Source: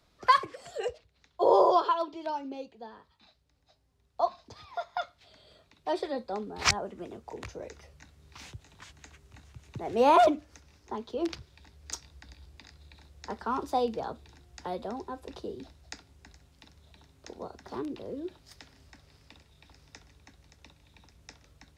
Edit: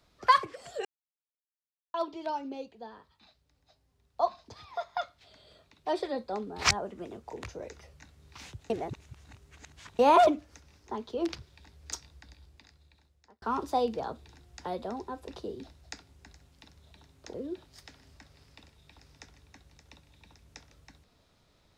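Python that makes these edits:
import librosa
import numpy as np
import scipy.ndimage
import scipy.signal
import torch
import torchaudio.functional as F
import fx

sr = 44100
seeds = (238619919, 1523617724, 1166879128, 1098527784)

y = fx.edit(x, sr, fx.silence(start_s=0.85, length_s=1.09),
    fx.reverse_span(start_s=8.7, length_s=1.29),
    fx.fade_out_span(start_s=11.92, length_s=1.5),
    fx.cut(start_s=17.34, length_s=0.73), tone=tone)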